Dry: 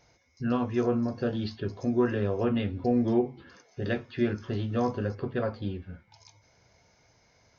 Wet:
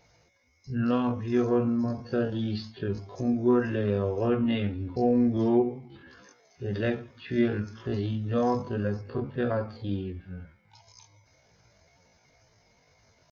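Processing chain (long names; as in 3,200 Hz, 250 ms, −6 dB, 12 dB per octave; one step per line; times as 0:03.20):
spectral magnitudes quantised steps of 15 dB
tempo change 0.57×
level +1.5 dB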